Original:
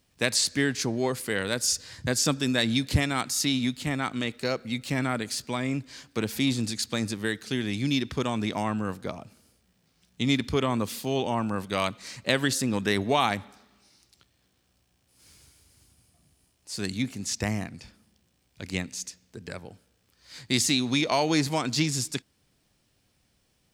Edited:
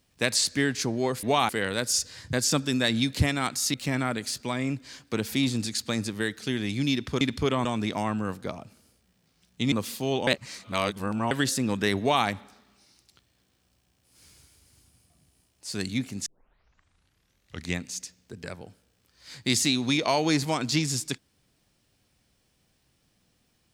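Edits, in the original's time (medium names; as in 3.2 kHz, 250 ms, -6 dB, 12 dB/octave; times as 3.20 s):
3.48–4.78 s: delete
10.32–10.76 s: move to 8.25 s
11.31–12.35 s: reverse
13.04–13.30 s: copy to 1.23 s
17.30 s: tape start 1.54 s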